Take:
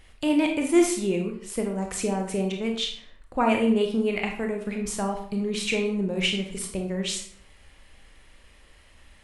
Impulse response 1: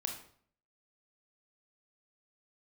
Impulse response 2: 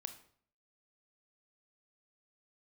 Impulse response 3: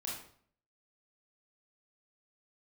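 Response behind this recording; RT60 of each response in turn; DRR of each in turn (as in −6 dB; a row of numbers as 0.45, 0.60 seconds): 1; 0.55, 0.55, 0.55 seconds; 2.5, 8.0, −4.5 decibels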